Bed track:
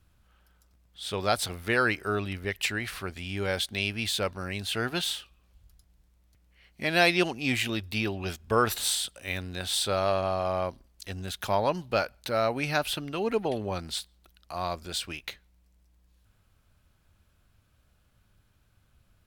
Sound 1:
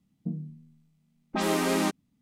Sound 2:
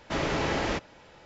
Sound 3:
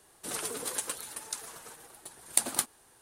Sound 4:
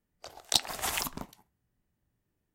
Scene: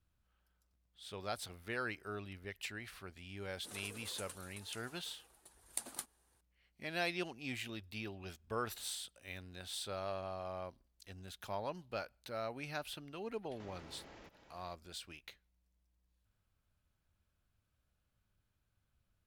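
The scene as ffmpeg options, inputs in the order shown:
-filter_complex "[0:a]volume=-15dB[a];[2:a]acompressor=threshold=-40dB:ratio=10:attack=1.6:release=137:knee=1:detection=peak[b];[3:a]atrim=end=3.01,asetpts=PTS-STARTPTS,volume=-15dB,afade=t=in:d=0.004:c=hsin,afade=t=out:st=3.006:d=0.004:c=hsin,adelay=3400[c];[b]atrim=end=1.25,asetpts=PTS-STARTPTS,volume=-11.5dB,afade=t=in:d=0.004:c=hsin,afade=t=out:st=1.246:d=0.004:c=hsin,adelay=13500[d];[a][c][d]amix=inputs=3:normalize=0"

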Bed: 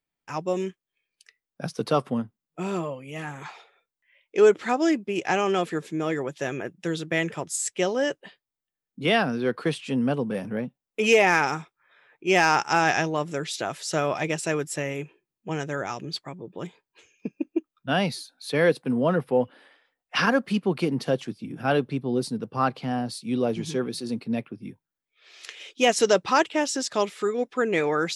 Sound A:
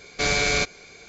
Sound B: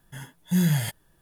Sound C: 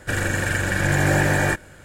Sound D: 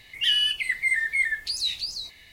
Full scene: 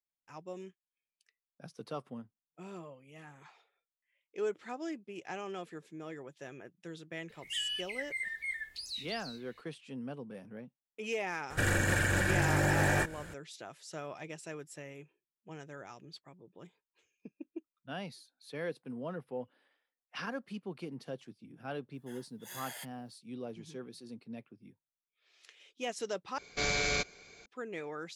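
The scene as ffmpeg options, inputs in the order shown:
-filter_complex "[0:a]volume=-17.5dB[a];[3:a]alimiter=limit=-17dB:level=0:latency=1:release=111[b];[2:a]highpass=f=570:w=0.5412,highpass=f=570:w=1.3066[c];[a]asplit=2[d][e];[d]atrim=end=26.384[f];[1:a]atrim=end=1.08,asetpts=PTS-STARTPTS,volume=-9dB[g];[e]atrim=start=27.456[h];[4:a]atrim=end=2.32,asetpts=PTS-STARTPTS,volume=-14dB,afade=t=in:d=0.004:c=hsin,afade=t=out:st=2.316:d=0.004:c=hsin,adelay=7290[i];[b]atrim=end=1.84,asetpts=PTS-STARTPTS,volume=-2dB,afade=t=in:d=0.004:c=hsin,afade=t=out:st=1.836:d=0.004:c=hsin,adelay=11500[j];[c]atrim=end=1.21,asetpts=PTS-STARTPTS,volume=-11.5dB,afade=t=in:d=0.004:c=hsin,afade=t=out:st=1.206:d=0.004:c=hsin,adelay=21940[k];[f][g]acrossfade=d=0.004:c1=hsin:c2=hsin[l];[l][h]acrossfade=d=0.004:c1=hsin:c2=hsin[m];[m][i][j][k]amix=inputs=4:normalize=0"

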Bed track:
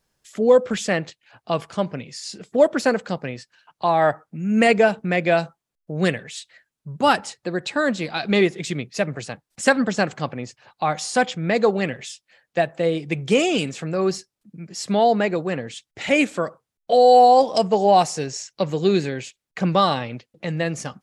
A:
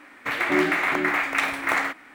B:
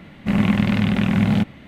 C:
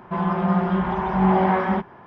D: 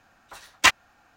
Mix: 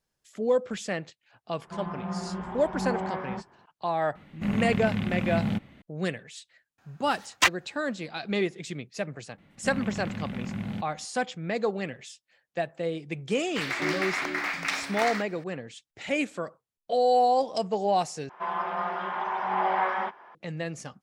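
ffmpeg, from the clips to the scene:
-filter_complex "[3:a]asplit=2[a][b];[2:a]asplit=2[c][d];[0:a]volume=-9.5dB[e];[4:a]highpass=51[f];[1:a]equalizer=f=5k:t=o:w=0.94:g=14.5[g];[b]highpass=710[h];[e]asplit=2[i][j];[i]atrim=end=18.294[k];[h]atrim=end=2.06,asetpts=PTS-STARTPTS,volume=-2dB[l];[j]atrim=start=20.346[m];[a]atrim=end=2.06,asetpts=PTS-STARTPTS,volume=-13dB,afade=t=in:d=0.004:c=hsin,afade=t=out:st=2.056:d=0.004:c=hsin,adelay=1600[n];[c]atrim=end=1.67,asetpts=PTS-STARTPTS,volume=-10dB,afade=t=in:d=0.004:c=hsin,afade=t=out:st=1.666:d=0.004:c=hsin,adelay=4150[o];[f]atrim=end=1.16,asetpts=PTS-STARTPTS,volume=-4dB,afade=t=in:d=0.004:c=hsin,afade=t=out:st=1.156:d=0.004:c=hsin,adelay=6780[p];[d]atrim=end=1.67,asetpts=PTS-STARTPTS,volume=-16dB,afade=t=in:d=0.004:c=hsin,afade=t=out:st=1.666:d=0.004:c=hsin,adelay=413658S[q];[g]atrim=end=2.14,asetpts=PTS-STARTPTS,volume=-8.5dB,afade=t=in:d=0.004:c=hsin,afade=t=out:st=2.136:d=0.004:c=hsin,adelay=13300[r];[k][l]acrossfade=d=0.004:c1=hsin:c2=hsin[s];[s][m]acrossfade=d=0.004:c1=hsin:c2=hsin[t];[t][n][o][p][q][r]amix=inputs=6:normalize=0"

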